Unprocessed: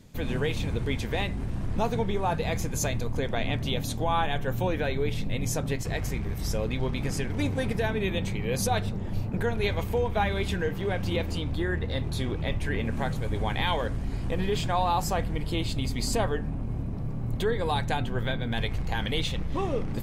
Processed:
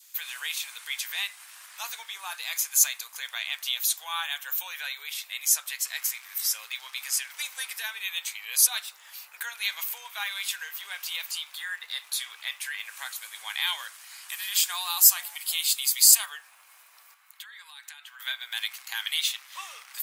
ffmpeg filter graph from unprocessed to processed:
-filter_complex "[0:a]asettb=1/sr,asplit=3[a][b][c];[a]atrim=end=14.294[d];[b]atrim=start=14.29:end=16.26,asetpts=PTS-STARTPTS,afade=t=in:d=0.004:c=qsin,afade=t=out:st=1.966:d=0.004:c=qsin,aemphasis=mode=production:type=cd,acrossover=split=530[e][f];[e]adelay=370[g];[g][f]amix=inputs=2:normalize=0,atrim=end_sample=86877[h];[c]atrim=start=16.256[i];[d][h]acrossfade=d=0.004:c1=hsin:c2=qsin[j];[j][i]acrossfade=d=0.004:c1=qsin:c2=hsin,asettb=1/sr,asplit=3[k][l][m];[k]atrim=end=17.144[n];[l]atrim=start=17.14:end=18.2,asetpts=PTS-STARTPTS,afade=t=in:d=0.004:c=qsin,afade=t=out:st=1.056:d=0.004:c=qsin,highpass=1.2k,highshelf=f=3.2k:g=-10,acompressor=threshold=-43dB:ratio=6:attack=3.2:release=140:knee=1:detection=peak[o];[m]atrim=start=18.196[p];[n][o]acrossfade=d=0.004:c1=hsin:c2=qsin[q];[q][p]acrossfade=d=0.004:c1=qsin:c2=hsin,adynamicequalizer=threshold=0.00501:dfrequency=1800:dqfactor=2.1:tfrequency=1800:tqfactor=2.1:attack=5:release=100:ratio=0.375:range=1.5:mode=cutabove:tftype=bell,highpass=f=1.2k:w=0.5412,highpass=f=1.2k:w=1.3066,aemphasis=mode=production:type=riaa"

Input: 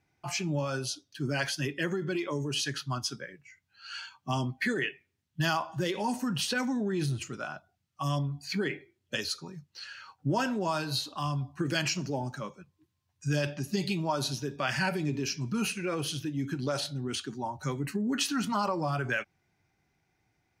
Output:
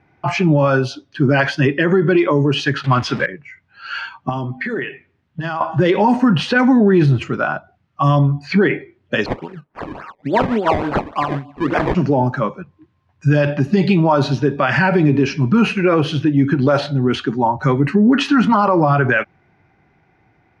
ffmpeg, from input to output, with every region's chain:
-filter_complex "[0:a]asettb=1/sr,asplit=3[a][b][c];[a]atrim=end=2.844[d];[b]atrim=start=2.84:end=3.26,asetpts=PTS-STARTPTS,afade=t=in:d=0.004:c=qsin,afade=t=out:st=0.416:d=0.004:c=qsin,aeval=exprs='val(0)+0.5*0.00794*sgn(val(0))':c=same,equalizer=f=2.7k:w=0.96:g=8[e];[c]atrim=start=3.256[f];[d][e]acrossfade=d=0.004:c1=hsin:c2=qsin[g];[g][f]acrossfade=d=0.004:c1=qsin:c2=hsin,asettb=1/sr,asplit=3[h][i][j];[h]atrim=end=4.294[k];[i]atrim=start=4.29:end=5.61,asetpts=PTS-STARTPTS,afade=t=in:d=0.004:c=qsin,afade=t=out:st=1.316:d=0.004:c=qsin,acompressor=threshold=-36dB:ratio=12:attack=3.2:release=140:knee=1:detection=peak,bandreject=f=50:t=h:w=6,bandreject=f=100:t=h:w=6,bandreject=f=150:t=h:w=6,bandreject=f=200:t=h:w=6,bandreject=f=250:t=h:w=6[l];[j]atrim=start=5.606[m];[k][l]acrossfade=d=0.004:c1=hsin:c2=qsin[n];[n][m]acrossfade=d=0.004:c1=qsin:c2=hsin,asettb=1/sr,asplit=3[o][p][q];[o]atrim=end=9.264[r];[p]atrim=start=9.26:end=11.95,asetpts=PTS-STARTPTS,afade=t=in:d=0.004:c=qsin,afade=t=out:st=2.686:d=0.004:c=qsin,highpass=240,lowpass=4.9k,acrossover=split=1800[s][t];[s]aeval=exprs='val(0)*(1-0.7/2+0.7/2*cos(2*PI*6.2*n/s))':c=same[u];[t]aeval=exprs='val(0)*(1-0.7/2-0.7/2*cos(2*PI*6.2*n/s))':c=same[v];[u][v]amix=inputs=2:normalize=0,acrusher=samples=22:mix=1:aa=0.000001:lfo=1:lforange=22:lforate=3.5[w];[q]atrim=start=11.946[x];[r][w]acrossfade=d=0.004:c1=hsin:c2=qsin[y];[y][x]acrossfade=d=0.004:c1=qsin:c2=hsin,lowpass=1.9k,lowshelf=f=95:g=-6.5,alimiter=level_in=23.5dB:limit=-1dB:release=50:level=0:latency=1,volume=-4dB"

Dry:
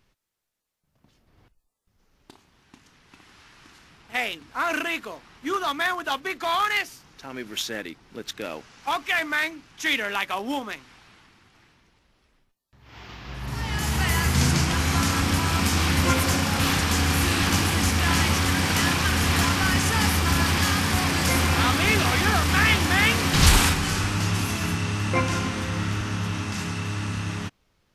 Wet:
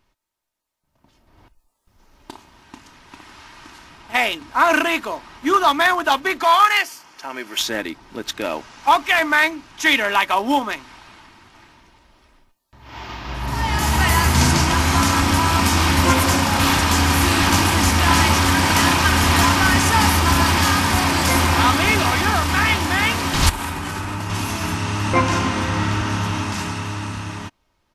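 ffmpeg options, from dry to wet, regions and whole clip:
-filter_complex "[0:a]asettb=1/sr,asplit=3[a][b][c];[a]atrim=end=6.434[d];[b]atrim=start=6.43:end=7.59,asetpts=PTS-STARTPTS,afade=t=in:d=0.004:c=qsin,afade=t=out:st=1.156:d=0.004:c=qsin,highpass=f=630:p=1,bandreject=f=3.8k:w=9.2[e];[c]atrim=start=7.586[f];[d][e]acrossfade=d=0.004:c1=hsin:c2=qsin[g];[g][f]acrossfade=d=0.004:c1=qsin:c2=hsin,asettb=1/sr,asplit=3[h][i][j];[h]atrim=end=23.494[k];[i]atrim=start=23.49:end=24.3,asetpts=PTS-STARTPTS,afade=t=in:d=0.004:c=qsin,afade=t=out:st=0.806:d=0.004:c=qsin,equalizer=f=5.2k:t=o:w=1.7:g=-6.5,acompressor=threshold=-22dB:ratio=10:attack=3.2:release=140:knee=1:detection=peak,highpass=54[l];[j]atrim=start=24.296[m];[k][l]acrossfade=d=0.004:c1=hsin:c2=qsin[n];[n][m]acrossfade=d=0.004:c1=qsin:c2=hsin,asettb=1/sr,asplit=3[o][p][q];[o]atrim=end=25.134[r];[p]atrim=start=25.13:end=26.09,asetpts=PTS-STARTPTS,afade=t=in:d=0.004:c=qsin,afade=t=out:st=0.956:d=0.004:c=qsin,highpass=43,highshelf=f=11k:g=-9[s];[q]atrim=start=26.086[t];[r][s]acrossfade=d=0.004:c1=hsin:c2=qsin[u];[u][t]acrossfade=d=0.004:c1=qsin:c2=hsin,equalizer=f=910:w=2:g=6.5,aecho=1:1:3.2:0.33,dynaudnorm=f=140:g=21:m=11.5dB,volume=-1dB"

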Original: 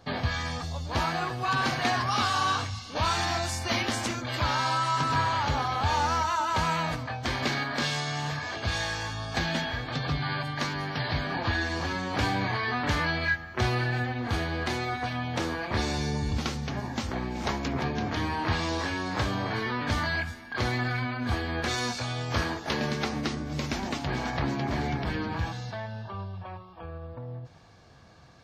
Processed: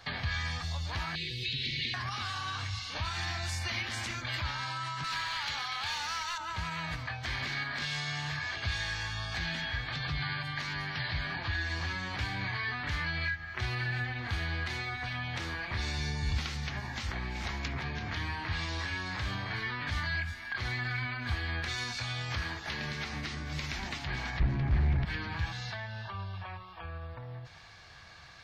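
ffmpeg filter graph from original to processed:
-filter_complex "[0:a]asettb=1/sr,asplit=3[a][b][c];[a]atrim=end=1.154[d];[b]atrim=start=1.15:end=1.94,asetpts=PTS-STARTPTS,afade=t=in:d=0.004:c=qsin,afade=t=out:st=0.786:d=0.004:c=qsin,acrossover=split=4300[e][f];[f]acompressor=threshold=-51dB:ratio=4:attack=1:release=60[g];[e][g]amix=inputs=2:normalize=0,asuperstop=centerf=1000:order=12:qfactor=0.64,equalizer=f=3.8k:w=2.2:g=10[h];[c]atrim=start=1.936[i];[d][h]acrossfade=d=0.004:c1=hsin:c2=qsin[j];[j][i]acrossfade=d=0.004:c1=qsin:c2=hsin,asettb=1/sr,asplit=3[k][l][m];[k]atrim=end=5.044[n];[l]atrim=start=5.04:end=6.38,asetpts=PTS-STARTPTS,afade=t=in:d=0.004:c=qsin,afade=t=out:st=1.336:d=0.004:c=qsin,highpass=f=770:p=1,equalizer=f=5.2k:w=0.36:g=8,volume=21.5dB,asoftclip=hard,volume=-21.5dB[o];[m]atrim=start=6.376[p];[n][o]acrossfade=d=0.004:c1=hsin:c2=qsin[q];[q][p]acrossfade=d=0.004:c1=qsin:c2=hsin,asettb=1/sr,asplit=3[r][s][t];[r]atrim=end=24.404[u];[s]atrim=start=24.4:end=25.05,asetpts=PTS-STARTPTS,afade=t=in:d=0.004:c=qsin,afade=t=out:st=0.646:d=0.004:c=qsin,aemphasis=mode=reproduction:type=riaa,aeval=exprs='0.501*sin(PI/2*2.82*val(0)/0.501)':c=same[v];[t]atrim=start=25.046[w];[u][v]acrossfade=d=0.004:c1=hsin:c2=qsin[x];[x][w]acrossfade=d=0.004:c1=qsin:c2=hsin,alimiter=limit=-20.5dB:level=0:latency=1:release=105,acrossover=split=310[y][z];[z]acompressor=threshold=-44dB:ratio=3[aa];[y][aa]amix=inputs=2:normalize=0,equalizer=f=125:t=o:w=1:g=-4,equalizer=f=250:t=o:w=1:g=-11,equalizer=f=500:t=o:w=1:g=-6,equalizer=f=2k:t=o:w=1:g=8,equalizer=f=4k:t=o:w=1:g=5,volume=2dB"

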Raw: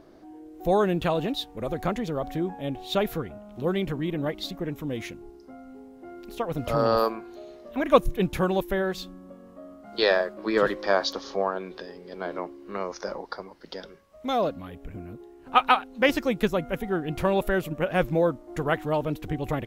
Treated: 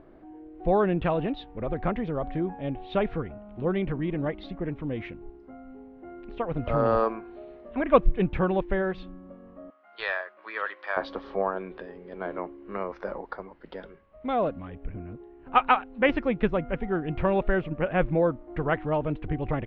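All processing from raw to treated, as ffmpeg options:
-filter_complex "[0:a]asettb=1/sr,asplit=3[a][b][c];[a]atrim=end=9.704[d];[b]atrim=start=9.7:end=10.97,asetpts=PTS-STARTPTS,afade=t=in:d=0.004:c=qsin,afade=t=out:st=1.266:d=0.004:c=qsin,highpass=1.2k,aeval=exprs='clip(val(0),-1,0.133)':c=same[e];[c]atrim=start=10.966[f];[d][e]acrossfade=d=0.004:c1=hsin:c2=qsin[g];[g][f]acrossfade=d=0.004:c1=qsin:c2=hsin,lowpass=f=2.7k:w=0.5412,lowpass=f=2.7k:w=1.3066,lowshelf=f=67:g=9,volume=-1dB"

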